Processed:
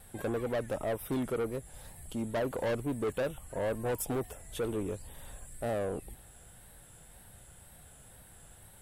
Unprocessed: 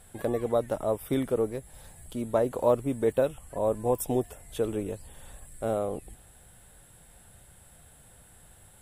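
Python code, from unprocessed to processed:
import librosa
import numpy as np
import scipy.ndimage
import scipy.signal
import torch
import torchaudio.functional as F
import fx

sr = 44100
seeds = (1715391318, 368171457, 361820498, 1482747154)

y = fx.wow_flutter(x, sr, seeds[0], rate_hz=2.1, depth_cents=74.0)
y = 10.0 ** (-28.0 / 20.0) * np.tanh(y / 10.0 ** (-28.0 / 20.0))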